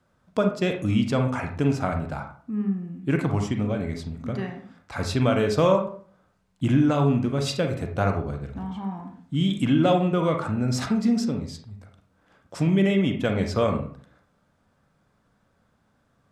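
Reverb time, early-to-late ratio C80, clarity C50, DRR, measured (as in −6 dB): 0.45 s, 12.0 dB, 6.5 dB, 3.5 dB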